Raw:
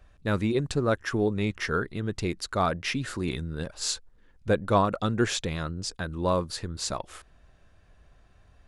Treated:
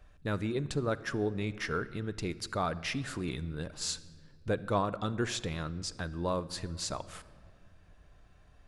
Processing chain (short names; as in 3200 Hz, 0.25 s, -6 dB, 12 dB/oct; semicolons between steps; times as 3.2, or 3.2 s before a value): in parallel at +2 dB: compressor, threshold -35 dBFS, peak gain reduction 17 dB; on the sum: shoebox room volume 3200 m³, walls mixed, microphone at 0.43 m; gain -9 dB